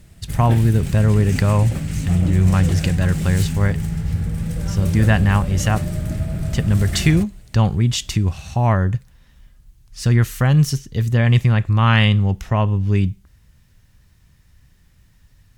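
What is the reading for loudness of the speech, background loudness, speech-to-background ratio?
-18.5 LUFS, -25.0 LUFS, 6.5 dB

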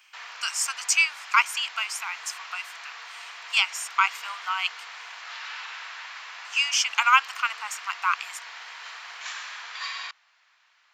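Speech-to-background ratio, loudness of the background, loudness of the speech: 13.5 dB, -38.5 LUFS, -25.0 LUFS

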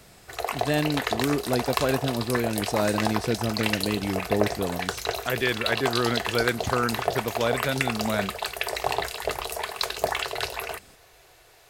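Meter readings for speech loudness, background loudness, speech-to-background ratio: -28.0 LUFS, -29.5 LUFS, 1.5 dB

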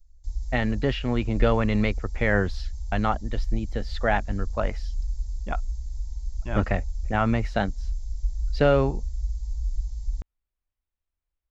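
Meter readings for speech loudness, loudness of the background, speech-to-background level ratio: -26.5 LUFS, -34.5 LUFS, 8.0 dB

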